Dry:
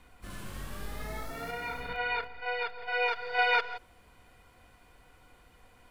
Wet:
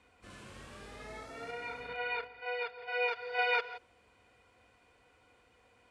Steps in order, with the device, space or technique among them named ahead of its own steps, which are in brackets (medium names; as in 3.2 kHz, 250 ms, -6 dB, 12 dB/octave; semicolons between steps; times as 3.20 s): car door speaker (cabinet simulation 81–8900 Hz, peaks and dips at 160 Hz -8 dB, 480 Hz +5 dB, 2.5 kHz +4 dB); trim -6 dB